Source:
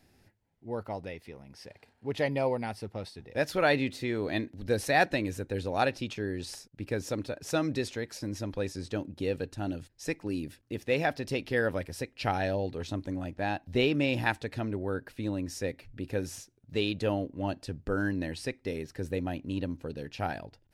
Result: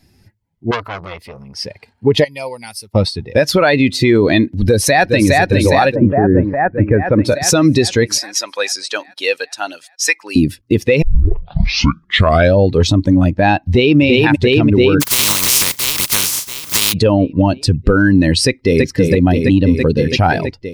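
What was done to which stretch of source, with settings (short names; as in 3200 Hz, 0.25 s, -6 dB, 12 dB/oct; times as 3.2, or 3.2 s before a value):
0.71–1.59 core saturation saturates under 3300 Hz
2.24–2.95 pre-emphasis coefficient 0.9
4.58–5.3 echo throw 0.41 s, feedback 70%, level -5 dB
5.94–7.24 LPF 1300 Hz -> 2400 Hz 24 dB/oct
8.18–10.36 HPF 900 Hz
11.02 tape start 1.54 s
13.57–14.01 echo throw 0.34 s, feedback 70%, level -0.5 dB
15–16.92 spectral contrast lowered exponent 0.18
18.45–18.85 echo throw 0.33 s, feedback 80%, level -2.5 dB
whole clip: per-bin expansion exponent 1.5; compressor 6:1, threshold -37 dBFS; maximiser +34 dB; gain -1 dB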